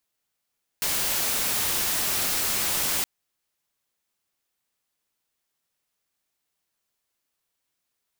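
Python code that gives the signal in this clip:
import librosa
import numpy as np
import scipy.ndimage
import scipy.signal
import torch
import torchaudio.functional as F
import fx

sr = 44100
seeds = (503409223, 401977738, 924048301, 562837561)

y = fx.noise_colour(sr, seeds[0], length_s=2.22, colour='white', level_db=-25.5)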